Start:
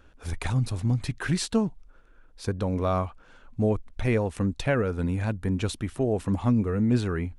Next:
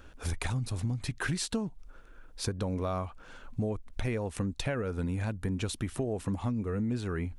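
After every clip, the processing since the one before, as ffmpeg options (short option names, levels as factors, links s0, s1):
-af "highshelf=f=5000:g=4.5,acompressor=threshold=0.0224:ratio=6,volume=1.5"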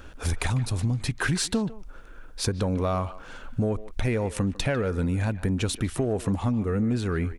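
-filter_complex "[0:a]asplit=2[s0][s1];[s1]asoftclip=type=tanh:threshold=0.0282,volume=0.398[s2];[s0][s2]amix=inputs=2:normalize=0,asplit=2[s3][s4];[s4]adelay=150,highpass=300,lowpass=3400,asoftclip=type=hard:threshold=0.0596,volume=0.178[s5];[s3][s5]amix=inputs=2:normalize=0,volume=1.68"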